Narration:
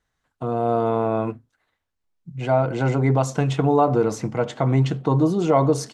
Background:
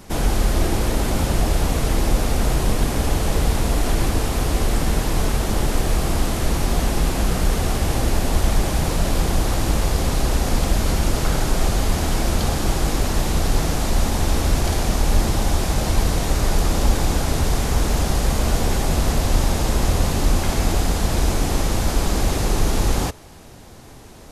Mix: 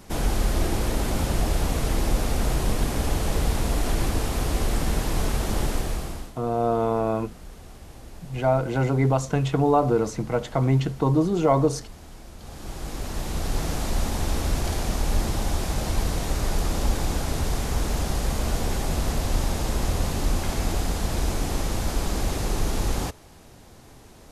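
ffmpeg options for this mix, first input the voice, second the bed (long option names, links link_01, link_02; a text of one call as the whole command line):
ffmpeg -i stem1.wav -i stem2.wav -filter_complex "[0:a]adelay=5950,volume=-2dB[link_01];[1:a]volume=13dB,afade=type=out:start_time=5.64:duration=0.69:silence=0.112202,afade=type=in:start_time=12.38:duration=1.36:silence=0.133352[link_02];[link_01][link_02]amix=inputs=2:normalize=0" out.wav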